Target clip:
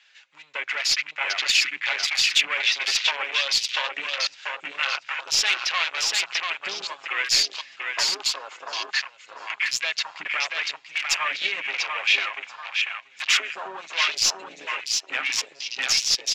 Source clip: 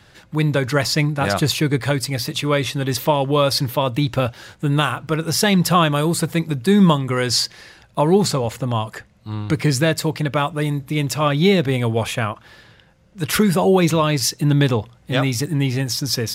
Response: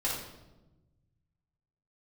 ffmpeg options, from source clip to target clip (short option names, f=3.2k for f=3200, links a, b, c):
-af "acompressor=threshold=-24dB:ratio=6,aresample=16000,aeval=exprs='clip(val(0),-1,0.0237)':c=same,aresample=44100,highpass=900,aemphasis=mode=production:type=50kf,aecho=1:1:7.4:0.42,aecho=1:1:688|1376|2064|2752|3440:0.668|0.281|0.118|0.0495|0.0208,afwtdn=0.0158,aeval=exprs='0.266*(cos(1*acos(clip(val(0)/0.266,-1,1)))-cos(1*PI/2))+0.0422*(cos(2*acos(clip(val(0)/0.266,-1,1)))-cos(2*PI/2))+0.0015*(cos(8*acos(clip(val(0)/0.266,-1,1)))-cos(8*PI/2))':c=same,equalizer=f=2.5k:t=o:w=1.2:g=15"